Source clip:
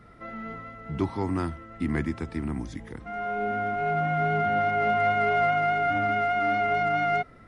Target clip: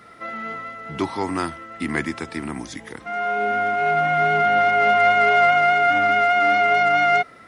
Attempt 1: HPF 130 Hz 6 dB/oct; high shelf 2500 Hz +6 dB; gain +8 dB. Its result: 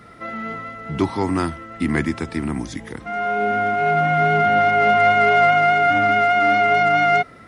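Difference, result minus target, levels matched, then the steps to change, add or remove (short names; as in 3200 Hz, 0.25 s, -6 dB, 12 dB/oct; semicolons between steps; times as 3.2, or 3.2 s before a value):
125 Hz band +7.5 dB
change: HPF 480 Hz 6 dB/oct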